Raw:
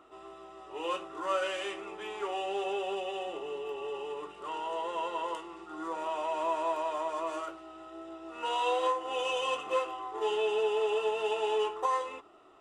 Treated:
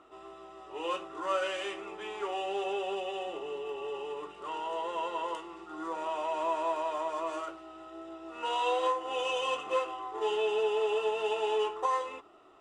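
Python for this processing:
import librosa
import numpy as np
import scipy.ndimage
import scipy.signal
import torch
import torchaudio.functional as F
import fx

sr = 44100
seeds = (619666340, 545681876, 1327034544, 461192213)

y = scipy.signal.sosfilt(scipy.signal.butter(2, 9700.0, 'lowpass', fs=sr, output='sos'), x)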